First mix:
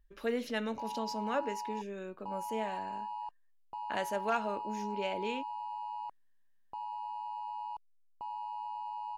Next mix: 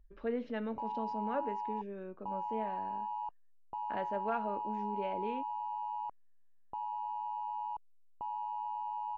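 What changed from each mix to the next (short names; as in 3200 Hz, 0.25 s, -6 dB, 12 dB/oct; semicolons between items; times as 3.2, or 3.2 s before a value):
background +5.5 dB; master: add tape spacing loss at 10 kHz 43 dB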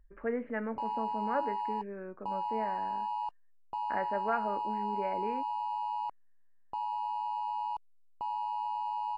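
speech: add steep low-pass 2100 Hz 48 dB/oct; master: remove tape spacing loss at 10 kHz 43 dB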